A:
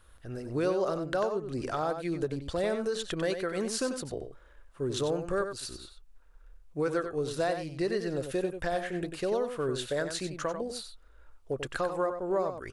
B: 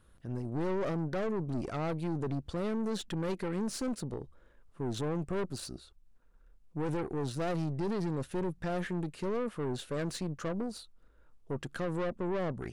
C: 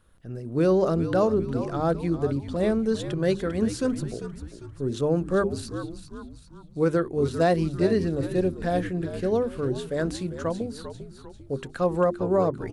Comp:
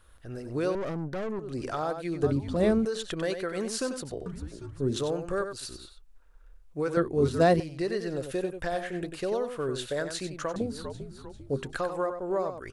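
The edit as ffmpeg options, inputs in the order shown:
-filter_complex "[2:a]asplit=4[s0][s1][s2][s3];[0:a]asplit=6[s4][s5][s6][s7][s8][s9];[s4]atrim=end=0.752[s10];[1:a]atrim=start=0.748:end=1.392[s11];[s5]atrim=start=1.388:end=2.232[s12];[s0]atrim=start=2.228:end=2.852[s13];[s6]atrim=start=2.848:end=4.262[s14];[s1]atrim=start=4.258:end=4.962[s15];[s7]atrim=start=4.958:end=6.972[s16];[s2]atrim=start=6.968:end=7.602[s17];[s8]atrim=start=7.598:end=10.562[s18];[s3]atrim=start=10.558:end=11.732[s19];[s9]atrim=start=11.728[s20];[s10][s11]acrossfade=d=0.004:c1=hsin:c2=hsin[s21];[s21][s12]acrossfade=d=0.004:c1=hsin:c2=hsin[s22];[s22][s13]acrossfade=d=0.004:c1=hsin:c2=hsin[s23];[s23][s14]acrossfade=d=0.004:c1=hsin:c2=hsin[s24];[s24][s15]acrossfade=d=0.004:c1=hsin:c2=hsin[s25];[s25][s16]acrossfade=d=0.004:c1=hsin:c2=hsin[s26];[s26][s17]acrossfade=d=0.004:c1=hsin:c2=hsin[s27];[s27][s18]acrossfade=d=0.004:c1=hsin:c2=hsin[s28];[s28][s19]acrossfade=d=0.004:c1=hsin:c2=hsin[s29];[s29][s20]acrossfade=d=0.004:c1=hsin:c2=hsin"

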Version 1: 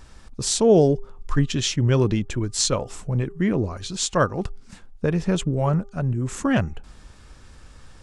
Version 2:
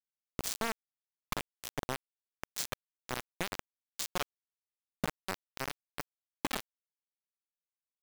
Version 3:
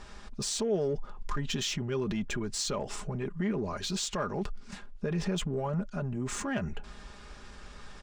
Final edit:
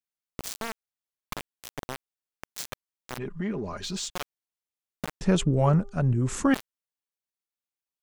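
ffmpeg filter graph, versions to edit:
-filter_complex "[1:a]asplit=3[s0][s1][s2];[s0]atrim=end=3.182[s3];[2:a]atrim=start=3.178:end=4.102[s4];[s1]atrim=start=4.098:end=5.212[s5];[0:a]atrim=start=5.208:end=6.542[s6];[s2]atrim=start=6.538[s7];[s3][s4]acrossfade=d=0.004:c1=hsin:c2=hsin[s8];[s8][s5]acrossfade=d=0.004:c1=hsin:c2=hsin[s9];[s9][s6]acrossfade=d=0.004:c1=hsin:c2=hsin[s10];[s10][s7]acrossfade=d=0.004:c1=hsin:c2=hsin"

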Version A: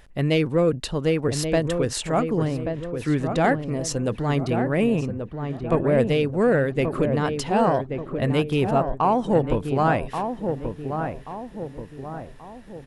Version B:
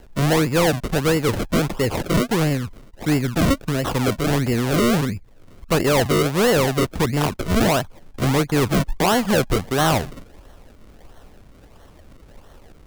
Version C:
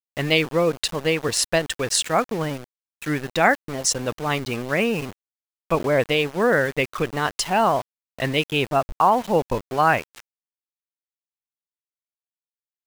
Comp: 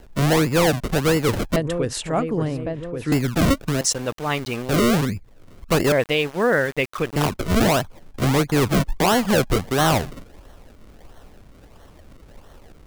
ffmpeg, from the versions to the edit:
-filter_complex "[2:a]asplit=2[s0][s1];[1:a]asplit=4[s2][s3][s4][s5];[s2]atrim=end=1.562[s6];[0:a]atrim=start=1.558:end=3.122[s7];[s3]atrim=start=3.118:end=3.812[s8];[s0]atrim=start=3.808:end=4.692[s9];[s4]atrim=start=4.688:end=5.922[s10];[s1]atrim=start=5.918:end=7.162[s11];[s5]atrim=start=7.158[s12];[s6][s7]acrossfade=d=0.004:c1=hsin:c2=hsin[s13];[s13][s8]acrossfade=d=0.004:c1=hsin:c2=hsin[s14];[s14][s9]acrossfade=d=0.004:c1=hsin:c2=hsin[s15];[s15][s10]acrossfade=d=0.004:c1=hsin:c2=hsin[s16];[s16][s11]acrossfade=d=0.004:c1=hsin:c2=hsin[s17];[s17][s12]acrossfade=d=0.004:c1=hsin:c2=hsin"

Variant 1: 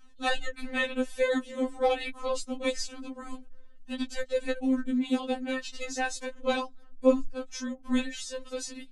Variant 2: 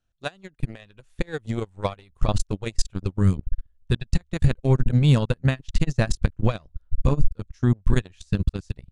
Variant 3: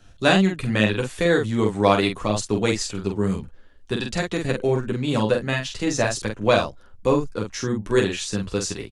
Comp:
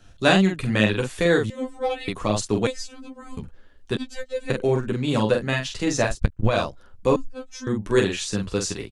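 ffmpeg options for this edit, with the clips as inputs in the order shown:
-filter_complex "[0:a]asplit=4[s0][s1][s2][s3];[2:a]asplit=6[s4][s5][s6][s7][s8][s9];[s4]atrim=end=1.502[s10];[s0]atrim=start=1.498:end=2.082[s11];[s5]atrim=start=2.078:end=2.672[s12];[s1]atrim=start=2.668:end=3.372[s13];[s6]atrim=start=3.368:end=3.972[s14];[s2]atrim=start=3.968:end=4.502[s15];[s7]atrim=start=4.498:end=6.2[s16];[1:a]atrim=start=6.04:end=6.62[s17];[s8]atrim=start=6.46:end=7.162[s18];[s3]atrim=start=7.158:end=7.672[s19];[s9]atrim=start=7.668[s20];[s10][s11]acrossfade=d=0.004:c1=hsin:c2=hsin[s21];[s21][s12]acrossfade=d=0.004:c1=hsin:c2=hsin[s22];[s22][s13]acrossfade=d=0.004:c1=hsin:c2=hsin[s23];[s23][s14]acrossfade=d=0.004:c1=hsin:c2=hsin[s24];[s24][s15]acrossfade=d=0.004:c1=hsin:c2=hsin[s25];[s25][s16]acrossfade=d=0.004:c1=hsin:c2=hsin[s26];[s26][s17]acrossfade=d=0.16:c1=tri:c2=tri[s27];[s27][s18]acrossfade=d=0.16:c1=tri:c2=tri[s28];[s28][s19]acrossfade=d=0.004:c1=hsin:c2=hsin[s29];[s29][s20]acrossfade=d=0.004:c1=hsin:c2=hsin"

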